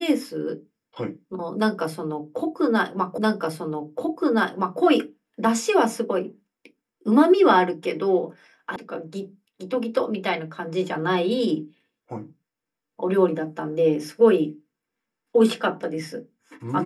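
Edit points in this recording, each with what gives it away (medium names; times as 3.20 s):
3.18 s: repeat of the last 1.62 s
8.76 s: sound stops dead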